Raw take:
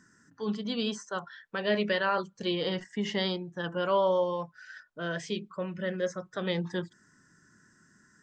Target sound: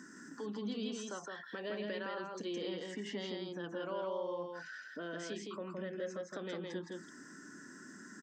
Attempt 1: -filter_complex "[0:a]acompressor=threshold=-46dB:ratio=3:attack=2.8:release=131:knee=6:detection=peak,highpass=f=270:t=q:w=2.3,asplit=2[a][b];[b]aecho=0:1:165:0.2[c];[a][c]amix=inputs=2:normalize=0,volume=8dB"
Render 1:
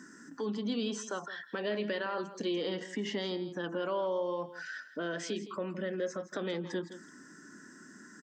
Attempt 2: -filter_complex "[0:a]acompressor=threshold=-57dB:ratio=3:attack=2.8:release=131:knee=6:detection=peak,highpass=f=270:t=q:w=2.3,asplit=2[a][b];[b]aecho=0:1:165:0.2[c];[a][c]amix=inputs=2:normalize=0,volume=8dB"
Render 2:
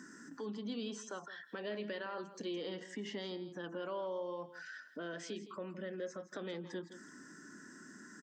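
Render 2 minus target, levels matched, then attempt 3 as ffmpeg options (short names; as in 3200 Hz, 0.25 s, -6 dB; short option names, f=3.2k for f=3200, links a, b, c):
echo-to-direct -11 dB
-filter_complex "[0:a]acompressor=threshold=-57dB:ratio=3:attack=2.8:release=131:knee=6:detection=peak,highpass=f=270:t=q:w=2.3,asplit=2[a][b];[b]aecho=0:1:165:0.708[c];[a][c]amix=inputs=2:normalize=0,volume=8dB"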